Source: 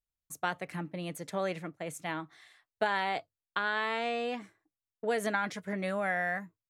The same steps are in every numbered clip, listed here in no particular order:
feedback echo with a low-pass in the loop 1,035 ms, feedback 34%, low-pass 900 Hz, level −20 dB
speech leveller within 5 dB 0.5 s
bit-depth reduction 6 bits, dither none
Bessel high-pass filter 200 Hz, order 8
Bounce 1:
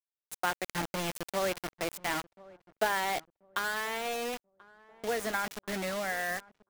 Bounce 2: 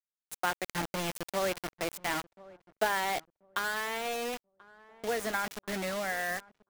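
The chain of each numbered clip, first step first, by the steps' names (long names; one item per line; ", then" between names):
Bessel high-pass filter, then bit-depth reduction, then speech leveller, then feedback echo with a low-pass in the loop
Bessel high-pass filter, then bit-depth reduction, then feedback echo with a low-pass in the loop, then speech leveller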